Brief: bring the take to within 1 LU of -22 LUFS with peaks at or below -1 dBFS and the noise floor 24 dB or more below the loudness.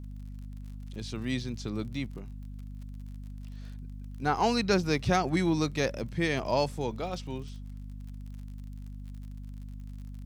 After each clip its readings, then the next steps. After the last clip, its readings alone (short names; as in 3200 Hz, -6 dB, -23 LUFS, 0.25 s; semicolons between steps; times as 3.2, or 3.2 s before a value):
ticks 44/s; hum 50 Hz; harmonics up to 250 Hz; hum level -39 dBFS; loudness -30.0 LUFS; peak -12.5 dBFS; loudness target -22.0 LUFS
-> de-click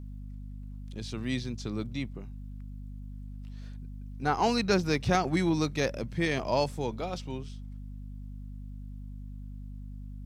ticks 0.29/s; hum 50 Hz; harmonics up to 250 Hz; hum level -39 dBFS
-> notches 50/100/150/200/250 Hz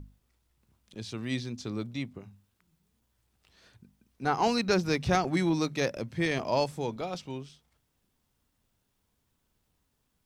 hum none; loudness -30.5 LUFS; peak -13.0 dBFS; loudness target -22.0 LUFS
-> gain +8.5 dB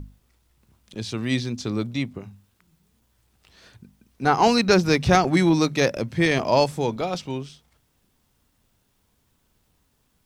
loudness -22.0 LUFS; peak -4.5 dBFS; noise floor -68 dBFS